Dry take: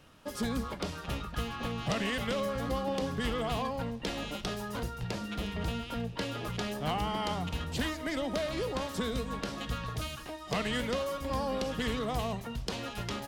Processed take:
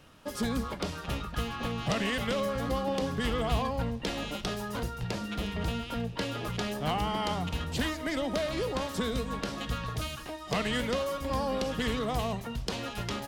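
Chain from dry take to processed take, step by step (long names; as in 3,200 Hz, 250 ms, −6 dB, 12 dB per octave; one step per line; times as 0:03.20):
0:03.33–0:04.01: parametric band 68 Hz +10 dB 1 octave
level +2 dB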